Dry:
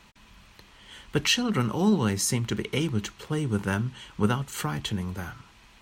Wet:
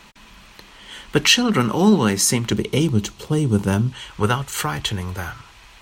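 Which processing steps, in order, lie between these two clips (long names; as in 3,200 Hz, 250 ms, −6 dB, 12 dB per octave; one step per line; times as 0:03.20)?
parametric band 82 Hz −9.5 dB 1.3 octaves, from 0:02.52 1,700 Hz, from 0:03.92 210 Hz
level +9 dB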